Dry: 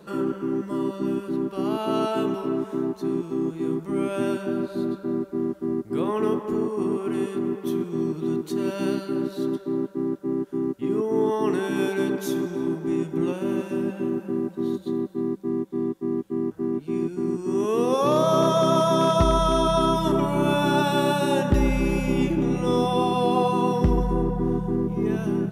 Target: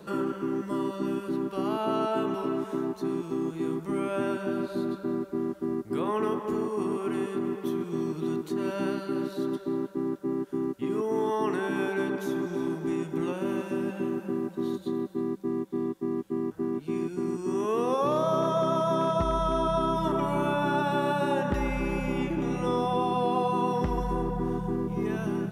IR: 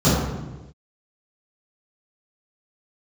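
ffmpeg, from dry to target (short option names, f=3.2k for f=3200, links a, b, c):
-filter_complex "[0:a]acrossover=split=690|2200[a][b][c];[a]acompressor=threshold=-29dB:ratio=4[d];[b]acompressor=threshold=-29dB:ratio=4[e];[c]acompressor=threshold=-51dB:ratio=4[f];[d][e][f]amix=inputs=3:normalize=0,volume=1dB"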